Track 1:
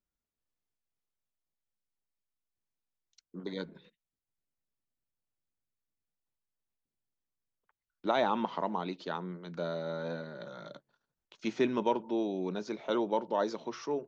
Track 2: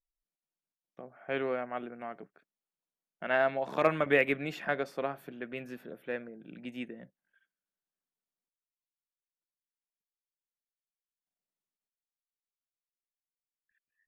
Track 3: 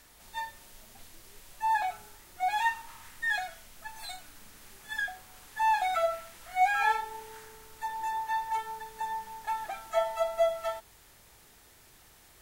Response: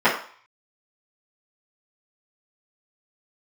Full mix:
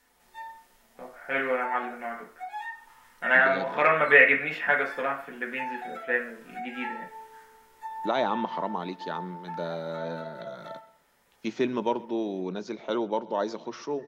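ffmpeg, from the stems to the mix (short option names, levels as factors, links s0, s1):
-filter_complex "[0:a]agate=range=0.224:threshold=0.00316:ratio=16:detection=peak,volume=1.26,asplit=3[s0][s1][s2];[s1]volume=0.0708[s3];[1:a]equalizer=f=2000:t=o:w=2:g=12,volume=0.447,asplit=2[s4][s5];[s5]volume=0.178[s6];[2:a]acompressor=threshold=0.0282:ratio=5,volume=0.251,asplit=2[s7][s8];[s8]volume=0.15[s9];[s2]apad=whole_len=547398[s10];[s7][s10]sidechaincompress=threshold=0.00794:ratio=8:attack=16:release=1340[s11];[3:a]atrim=start_sample=2205[s12];[s6][s9]amix=inputs=2:normalize=0[s13];[s13][s12]afir=irnorm=-1:irlink=0[s14];[s3]aecho=0:1:126|252|378|504|630|756|882|1008:1|0.53|0.281|0.149|0.0789|0.0418|0.0222|0.0117[s15];[s0][s4][s11][s14][s15]amix=inputs=5:normalize=0"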